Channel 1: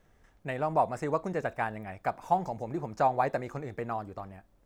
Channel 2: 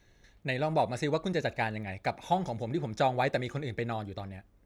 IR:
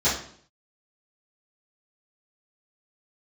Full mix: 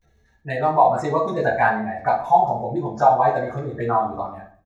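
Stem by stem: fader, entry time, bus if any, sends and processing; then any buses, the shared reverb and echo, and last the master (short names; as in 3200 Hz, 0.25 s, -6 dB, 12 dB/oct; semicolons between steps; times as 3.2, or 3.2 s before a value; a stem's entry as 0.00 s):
+1.5 dB, 0.00 s, send -9 dB, spectral gate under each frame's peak -15 dB strong; bell 370 Hz -2.5 dB 0.85 oct
-3.0 dB, 17 ms, send -19.5 dB, high shelf 8100 Hz +8 dB; level quantiser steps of 16 dB; auto duck -6 dB, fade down 1.95 s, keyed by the first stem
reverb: on, RT60 0.55 s, pre-delay 3 ms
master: low shelf 300 Hz -7.5 dB; AGC gain up to 7 dB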